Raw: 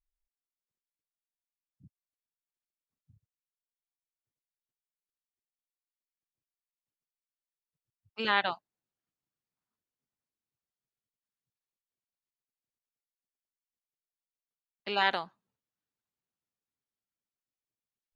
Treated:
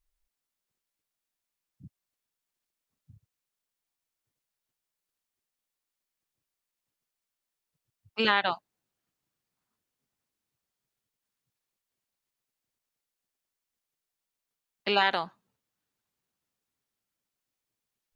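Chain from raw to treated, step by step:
downward compressor 4 to 1, threshold −28 dBFS, peak gain reduction 7.5 dB
level +8 dB

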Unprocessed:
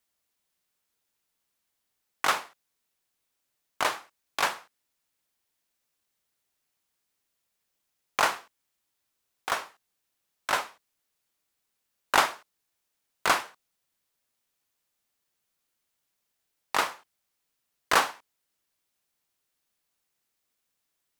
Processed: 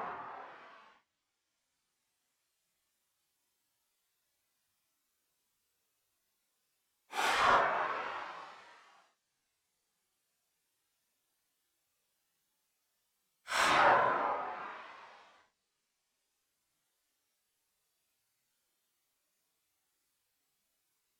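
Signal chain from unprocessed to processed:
treble cut that deepens with the level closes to 1,100 Hz, closed at −23.5 dBFS
extreme stretch with random phases 6.3×, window 0.05 s, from 0:08.33

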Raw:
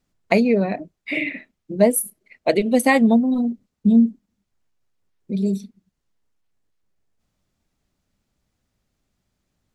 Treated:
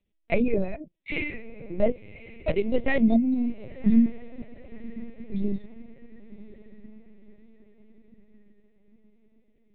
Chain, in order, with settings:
phaser with its sweep stopped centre 2,900 Hz, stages 4
feedback delay with all-pass diffusion 1,074 ms, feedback 48%, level −15.5 dB
linear-prediction vocoder at 8 kHz pitch kept
level −4 dB

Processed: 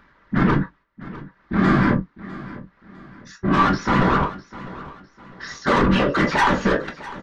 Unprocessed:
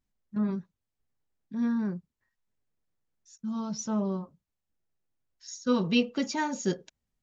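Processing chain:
mid-hump overdrive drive 32 dB, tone 3,500 Hz, clips at −13 dBFS
low-pass filter 4,600 Hz 24 dB per octave
noise gate −52 dBFS, range −16 dB
flat-topped bell 1,400 Hz +12 dB 1.2 octaves
upward compression, threshold −38 dBFS
spectral tilt −2 dB per octave
soft clipping −15 dBFS, distortion −14 dB
random phases in short frames
double-tracking delay 17 ms −13.5 dB
repeating echo 653 ms, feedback 36%, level −17.5 dB
convolution reverb, pre-delay 5 ms, DRR 5 dB

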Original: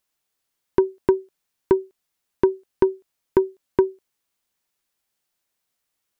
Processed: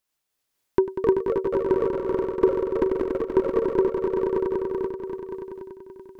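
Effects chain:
echo that builds up and dies away 96 ms, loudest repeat 5, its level −7 dB
delay with pitch and tempo change per echo 384 ms, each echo +3 semitones, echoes 2, each echo −6 dB
amplitude modulation by smooth noise, depth 55%

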